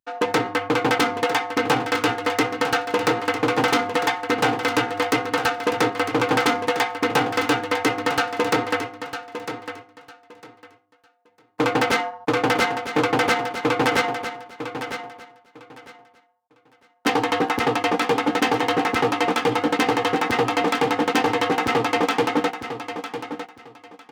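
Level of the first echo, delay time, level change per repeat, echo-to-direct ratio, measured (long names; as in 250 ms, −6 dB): −10.0 dB, 953 ms, −13.5 dB, −10.0 dB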